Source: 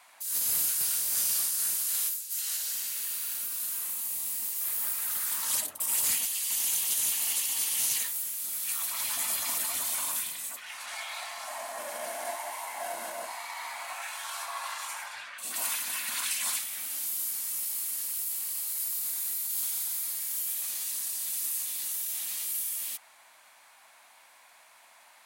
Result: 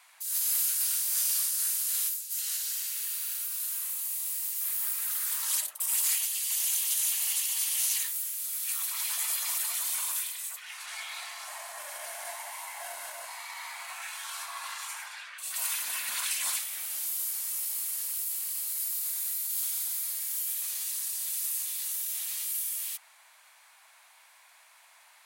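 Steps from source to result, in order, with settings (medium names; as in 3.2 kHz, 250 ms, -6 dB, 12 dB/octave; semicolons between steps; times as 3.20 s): Bessel high-pass 1.2 kHz, order 2, from 15.76 s 430 Hz, from 18.17 s 940 Hz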